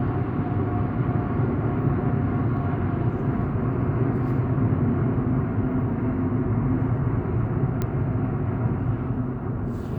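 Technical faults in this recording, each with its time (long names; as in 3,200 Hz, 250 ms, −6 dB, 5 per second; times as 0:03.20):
0:07.82: click −14 dBFS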